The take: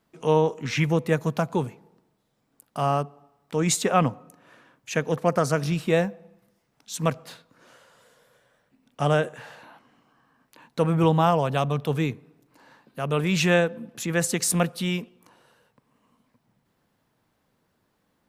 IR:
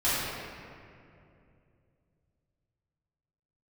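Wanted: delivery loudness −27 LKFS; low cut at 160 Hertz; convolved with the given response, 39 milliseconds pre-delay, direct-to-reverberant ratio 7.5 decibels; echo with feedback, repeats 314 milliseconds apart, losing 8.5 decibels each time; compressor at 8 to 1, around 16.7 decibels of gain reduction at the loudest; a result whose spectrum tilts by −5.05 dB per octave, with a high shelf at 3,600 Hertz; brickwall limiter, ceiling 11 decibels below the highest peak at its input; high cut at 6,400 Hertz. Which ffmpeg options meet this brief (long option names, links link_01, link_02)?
-filter_complex "[0:a]highpass=160,lowpass=6400,highshelf=frequency=3600:gain=-6.5,acompressor=threshold=-34dB:ratio=8,alimiter=level_in=8dB:limit=-24dB:level=0:latency=1,volume=-8dB,aecho=1:1:314|628|942|1256:0.376|0.143|0.0543|0.0206,asplit=2[link_01][link_02];[1:a]atrim=start_sample=2205,adelay=39[link_03];[link_02][link_03]afir=irnorm=-1:irlink=0,volume=-21dB[link_04];[link_01][link_04]amix=inputs=2:normalize=0,volume=15.5dB"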